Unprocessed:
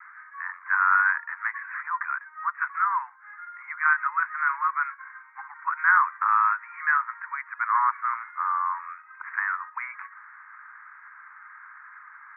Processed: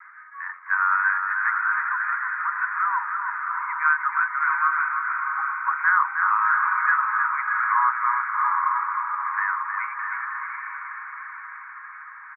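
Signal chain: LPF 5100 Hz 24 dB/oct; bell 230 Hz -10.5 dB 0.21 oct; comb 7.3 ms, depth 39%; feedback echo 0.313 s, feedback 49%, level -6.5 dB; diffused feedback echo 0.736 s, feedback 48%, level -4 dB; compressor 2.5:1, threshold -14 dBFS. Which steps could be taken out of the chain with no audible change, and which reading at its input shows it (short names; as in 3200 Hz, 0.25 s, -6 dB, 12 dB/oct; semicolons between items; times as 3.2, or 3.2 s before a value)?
LPF 5100 Hz: input band ends at 2400 Hz; bell 230 Hz: input band starts at 760 Hz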